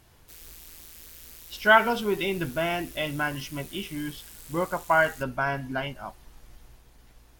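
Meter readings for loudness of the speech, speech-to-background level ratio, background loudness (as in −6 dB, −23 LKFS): −26.5 LKFS, 18.5 dB, −45.0 LKFS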